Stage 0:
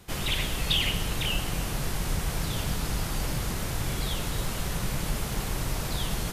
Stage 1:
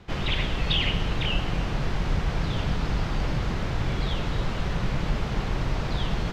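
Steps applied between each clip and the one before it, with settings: air absorption 200 m; gain +4 dB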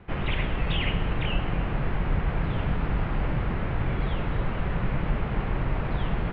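LPF 2600 Hz 24 dB/oct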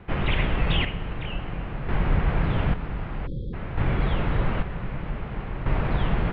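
spectral delete 3.27–3.53, 560–3200 Hz; chopper 0.53 Hz, depth 60%, duty 45%; gain +3.5 dB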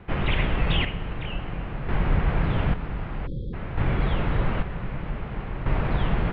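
nothing audible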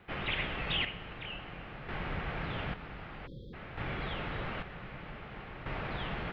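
tilt +2.5 dB/oct; notch 990 Hz, Q 16; gain -7.5 dB

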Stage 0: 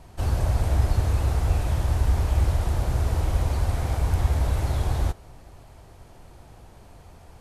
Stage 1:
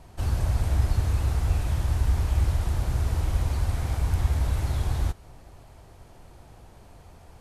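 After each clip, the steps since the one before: dynamic EQ 570 Hz, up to -5 dB, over -44 dBFS, Q 0.89; gain -1.5 dB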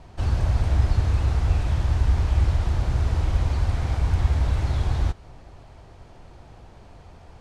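LPF 5600 Hz 12 dB/oct; gain +3 dB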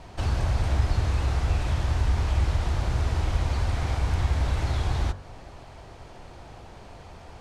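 low shelf 270 Hz -5.5 dB; de-hum 47.08 Hz, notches 39; in parallel at -0.5 dB: compressor, threshold -34 dBFS, peak gain reduction 15 dB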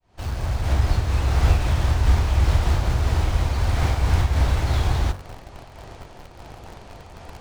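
opening faded in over 0.85 s; in parallel at -10 dB: requantised 6-bit, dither none; on the sum: noise-modulated level, depth 60%; gain +6 dB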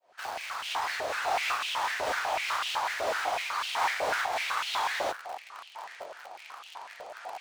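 stepped high-pass 8 Hz 590–2900 Hz; gain -2.5 dB

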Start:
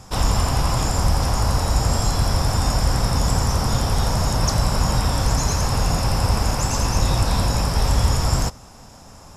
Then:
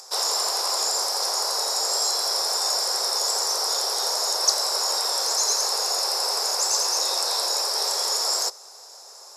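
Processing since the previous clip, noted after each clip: steep high-pass 380 Hz 72 dB/oct; resonant high shelf 3600 Hz +6.5 dB, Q 3; upward compressor, threshold -40 dBFS; gain -3.5 dB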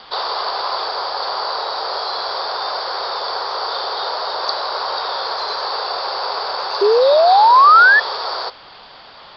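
in parallel at -5 dB: requantised 6-bit, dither triangular; on the sum: painted sound rise, 6.81–8, 390–1800 Hz -14 dBFS; rippled Chebyshev low-pass 4700 Hz, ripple 6 dB; gain +6.5 dB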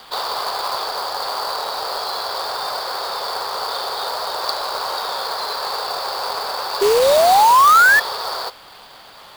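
companded quantiser 4-bit; gain -2 dB

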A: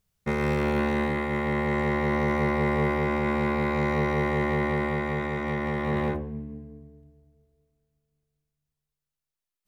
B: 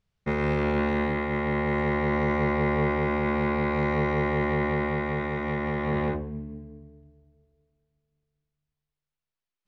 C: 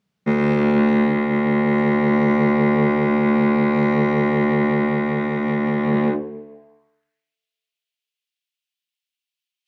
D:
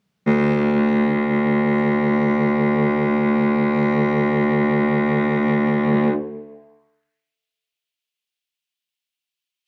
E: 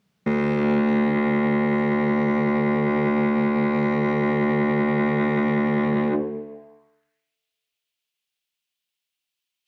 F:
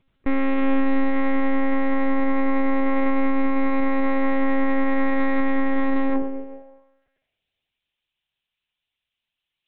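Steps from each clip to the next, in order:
LPF 4100 Hz 12 dB/oct
high-pass sweep 200 Hz -> 2900 Hz, 6.02–7.38; gain +4.5 dB
vocal rider 0.5 s
limiter -15.5 dBFS, peak gain reduction 9.5 dB; gain +2 dB
monotone LPC vocoder at 8 kHz 270 Hz; gain +3 dB

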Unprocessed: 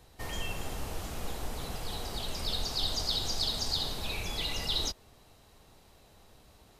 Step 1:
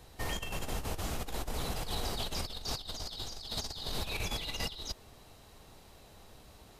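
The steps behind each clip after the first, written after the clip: negative-ratio compressor -36 dBFS, ratio -0.5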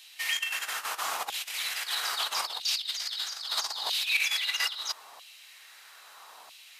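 LFO high-pass saw down 0.77 Hz 880–2900 Hz; gain +7.5 dB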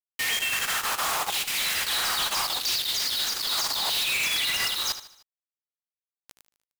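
companded quantiser 2-bit; feedback echo 76 ms, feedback 41%, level -12 dB; bit-crush 10-bit

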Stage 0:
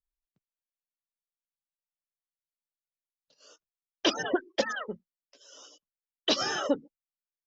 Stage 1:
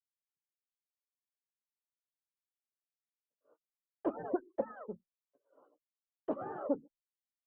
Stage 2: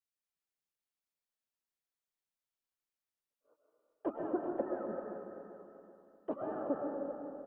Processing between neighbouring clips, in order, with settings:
inverse Chebyshev low-pass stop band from 4600 Hz, stop band 70 dB; expander -58 dBFS; gain -6 dB
feedback echo 0.387 s, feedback 40%, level -10 dB; reverb RT60 2.3 s, pre-delay 85 ms, DRR 0 dB; gain -2.5 dB

